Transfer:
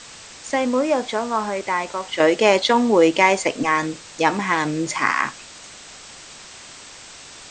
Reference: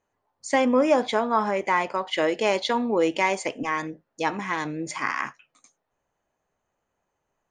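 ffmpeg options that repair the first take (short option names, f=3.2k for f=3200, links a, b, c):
-af "afwtdn=0.014,asetnsamples=n=441:p=0,asendcmd='2.2 volume volume -7.5dB',volume=0dB"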